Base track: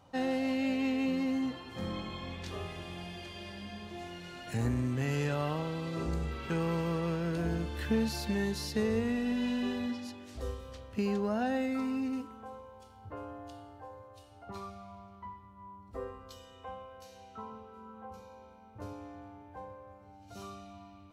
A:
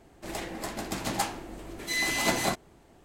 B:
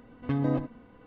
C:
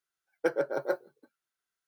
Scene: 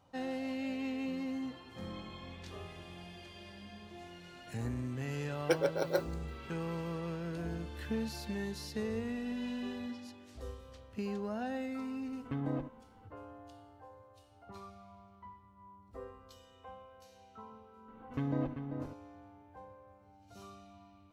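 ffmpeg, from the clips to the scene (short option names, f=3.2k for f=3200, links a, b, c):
-filter_complex "[2:a]asplit=2[a][b];[0:a]volume=-6.5dB[c];[3:a]highshelf=f=2.2k:t=q:w=1.5:g=8.5[d];[b]asplit=2[e][f];[f]adelay=390.7,volume=-7dB,highshelf=f=4k:g=-8.79[g];[e][g]amix=inputs=2:normalize=0[h];[d]atrim=end=1.87,asetpts=PTS-STARTPTS,volume=-1.5dB,afade=t=in:d=0.004:c=hsin,afade=t=out:st=1.866:d=0.004:c=hsin,adelay=222705S[i];[a]atrim=end=1.06,asetpts=PTS-STARTPTS,volume=-9dB,afade=t=in:d=0.004:c=hsin,afade=t=out:st=1.056:d=0.004:c=hsin,adelay=12020[j];[h]atrim=end=1.06,asetpts=PTS-STARTPTS,volume=-7dB,afade=t=in:d=0.004:c=hsin,afade=t=out:st=1.056:d=0.004:c=hsin,adelay=17880[k];[c][i][j][k]amix=inputs=4:normalize=0"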